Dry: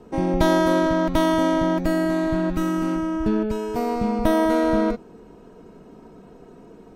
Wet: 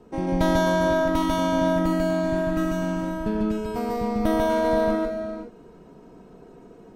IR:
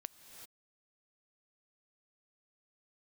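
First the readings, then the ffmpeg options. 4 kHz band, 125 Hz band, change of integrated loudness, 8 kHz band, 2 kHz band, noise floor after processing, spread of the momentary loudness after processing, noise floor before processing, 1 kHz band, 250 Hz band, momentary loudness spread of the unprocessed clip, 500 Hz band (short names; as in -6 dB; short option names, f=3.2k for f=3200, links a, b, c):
-1.5 dB, -0.5 dB, -2.0 dB, -1.0 dB, -0.5 dB, -48 dBFS, 7 LU, -47 dBFS, -1.5 dB, -3.0 dB, 6 LU, -1.0 dB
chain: -filter_complex "[0:a]asplit=2[a][b];[1:a]atrim=start_sample=2205,adelay=145[c];[b][c]afir=irnorm=-1:irlink=0,volume=3.5dB[d];[a][d]amix=inputs=2:normalize=0,volume=-4.5dB"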